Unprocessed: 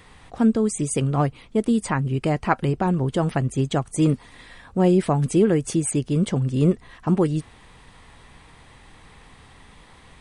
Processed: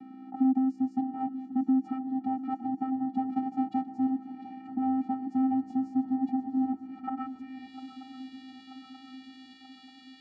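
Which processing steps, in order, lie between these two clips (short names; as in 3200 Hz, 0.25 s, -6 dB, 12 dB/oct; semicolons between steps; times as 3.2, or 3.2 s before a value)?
3.29–3.87 half-waves squared off; dynamic EQ 2300 Hz, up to -4 dB, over -43 dBFS, Q 1.2; in parallel at +2 dB: compressor, threshold -35 dBFS, peak gain reduction 20 dB; on the sum: soft clip -21 dBFS, distortion -8 dB; hum 60 Hz, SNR 10 dB; band-pass sweep 470 Hz -> 3500 Hz, 6.84–7.77; vocoder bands 8, square 262 Hz; on a send: swung echo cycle 0.934 s, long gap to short 3:1, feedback 59%, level -14.5 dB; on the sum: gain +6 dB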